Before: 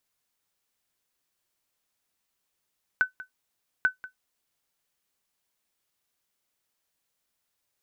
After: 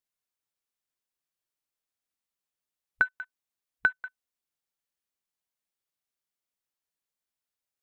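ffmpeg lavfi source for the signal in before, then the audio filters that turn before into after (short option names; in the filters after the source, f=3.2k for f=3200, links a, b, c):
-f lavfi -i "aevalsrc='0.224*(sin(2*PI*1510*mod(t,0.84))*exp(-6.91*mod(t,0.84)/0.12)+0.126*sin(2*PI*1510*max(mod(t,0.84)-0.19,0))*exp(-6.91*max(mod(t,0.84)-0.19,0)/0.12))':d=1.68:s=44100"
-filter_complex "[0:a]asplit=2[a][b];[b]acompressor=threshold=-32dB:ratio=6,volume=-2dB[c];[a][c]amix=inputs=2:normalize=0,afwtdn=0.00631"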